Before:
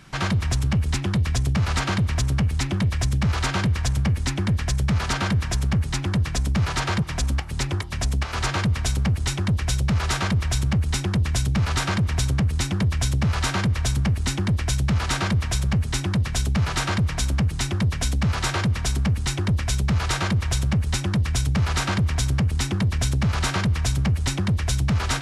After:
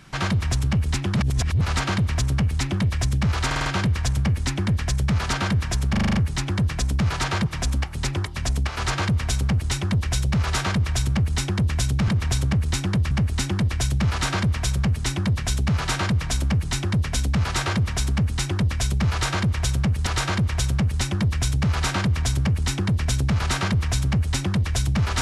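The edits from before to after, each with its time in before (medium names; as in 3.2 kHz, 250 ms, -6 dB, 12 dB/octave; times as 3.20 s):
1.16–1.61 s: reverse
3.46 s: stutter 0.05 s, 5 plays
5.71 s: stutter 0.04 s, 7 plays
11.64–11.95 s: delete
12.98–13.99 s: delete
20.00–20.95 s: loop, 2 plays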